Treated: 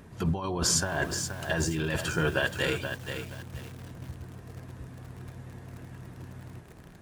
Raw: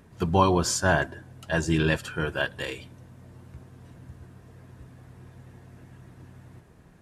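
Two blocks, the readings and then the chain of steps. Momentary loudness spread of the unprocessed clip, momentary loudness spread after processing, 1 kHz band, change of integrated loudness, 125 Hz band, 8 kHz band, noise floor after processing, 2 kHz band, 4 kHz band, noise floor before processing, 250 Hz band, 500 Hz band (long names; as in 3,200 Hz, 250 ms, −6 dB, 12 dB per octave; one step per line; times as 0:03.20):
13 LU, 18 LU, −8.5 dB, −4.0 dB, −2.5 dB, +3.0 dB, −50 dBFS, −2.0 dB, +1.5 dB, −54 dBFS, −4.5 dB, −4.5 dB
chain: compressor whose output falls as the input rises −28 dBFS, ratio −1
feedback echo at a low word length 477 ms, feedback 35%, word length 7 bits, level −7 dB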